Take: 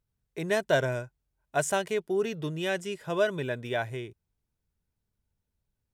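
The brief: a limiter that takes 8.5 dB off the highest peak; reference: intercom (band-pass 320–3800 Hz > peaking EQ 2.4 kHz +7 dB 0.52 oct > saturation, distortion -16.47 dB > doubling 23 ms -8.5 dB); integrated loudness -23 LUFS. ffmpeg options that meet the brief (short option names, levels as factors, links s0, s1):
-filter_complex "[0:a]alimiter=limit=0.0944:level=0:latency=1,highpass=320,lowpass=3800,equalizer=f=2400:t=o:w=0.52:g=7,asoftclip=threshold=0.0631,asplit=2[s0][s1];[s1]adelay=23,volume=0.376[s2];[s0][s2]amix=inputs=2:normalize=0,volume=3.76"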